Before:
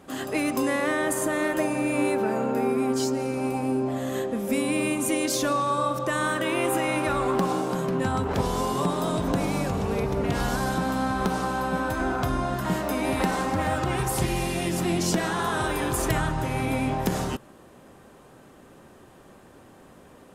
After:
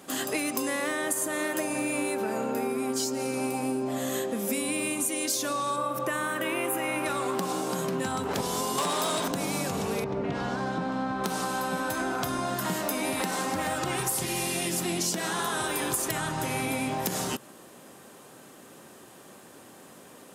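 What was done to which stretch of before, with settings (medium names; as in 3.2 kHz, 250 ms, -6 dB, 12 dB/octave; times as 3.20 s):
5.76–7.06 s: high-order bell 5.5 kHz -8.5 dB
8.78–9.28 s: overdrive pedal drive 18 dB, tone 7.2 kHz, clips at -12 dBFS
10.04–11.24 s: tape spacing loss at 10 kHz 29 dB
whole clip: high-pass 150 Hz 12 dB/octave; treble shelf 3.4 kHz +11.5 dB; compression, threshold -26 dBFS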